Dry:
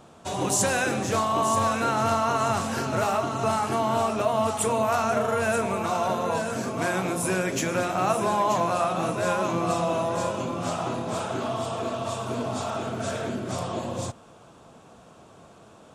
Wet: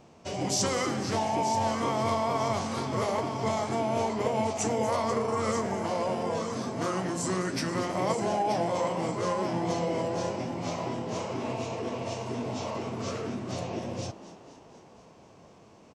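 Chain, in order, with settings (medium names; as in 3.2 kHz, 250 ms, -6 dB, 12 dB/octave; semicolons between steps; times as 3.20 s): frequency-shifting echo 242 ms, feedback 64%, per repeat +82 Hz, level -15.5 dB; formant shift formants -4 st; trim -4 dB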